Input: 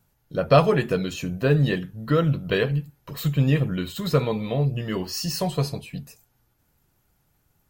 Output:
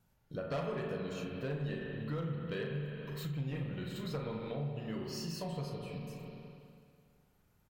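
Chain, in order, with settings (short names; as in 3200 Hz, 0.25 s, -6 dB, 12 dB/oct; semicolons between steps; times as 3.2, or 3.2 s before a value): hard clip -13.5 dBFS, distortion -15 dB; high shelf 10000 Hz -7 dB; doubler 36 ms -8 dB; spring tank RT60 2.1 s, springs 41/54 ms, chirp 40 ms, DRR 1.5 dB; compressor 2.5:1, threshold -35 dBFS, peak gain reduction 15 dB; gain -6.5 dB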